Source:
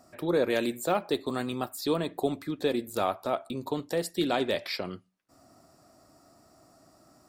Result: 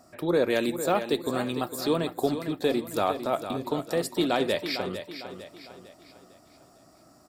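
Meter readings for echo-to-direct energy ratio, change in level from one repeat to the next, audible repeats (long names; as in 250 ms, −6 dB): −9.0 dB, −7.5 dB, 4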